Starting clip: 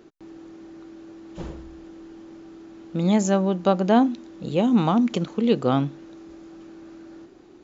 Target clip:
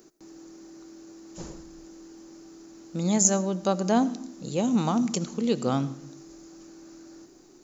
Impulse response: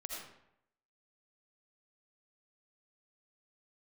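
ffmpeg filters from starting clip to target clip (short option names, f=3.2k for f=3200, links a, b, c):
-filter_complex "[0:a]equalizer=f=72:w=2.3:g=-12.5,aexciter=amount=9.2:drive=2.4:freq=4.8k,asplit=2[a][b];[b]asubboost=boost=5:cutoff=230[c];[1:a]atrim=start_sample=2205[d];[c][d]afir=irnorm=-1:irlink=0,volume=-12dB[e];[a][e]amix=inputs=2:normalize=0,volume=-6dB"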